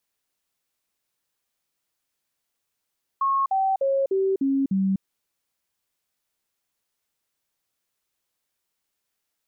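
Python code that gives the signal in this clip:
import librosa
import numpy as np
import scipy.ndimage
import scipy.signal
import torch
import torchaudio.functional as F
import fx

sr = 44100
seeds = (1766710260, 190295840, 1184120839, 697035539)

y = fx.stepped_sweep(sr, from_hz=1090.0, direction='down', per_octave=2, tones=6, dwell_s=0.25, gap_s=0.05, level_db=-19.0)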